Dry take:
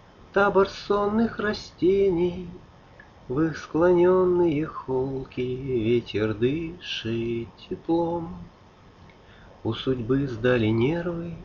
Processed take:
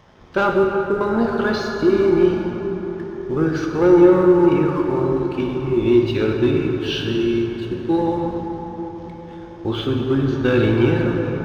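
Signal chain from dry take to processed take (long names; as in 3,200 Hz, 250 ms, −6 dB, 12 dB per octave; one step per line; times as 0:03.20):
0:00.53–0:01.01: Butterworth low-pass 520 Hz 36 dB per octave
leveller curve on the samples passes 1
dense smooth reverb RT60 4.8 s, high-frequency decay 0.45×, DRR 0.5 dB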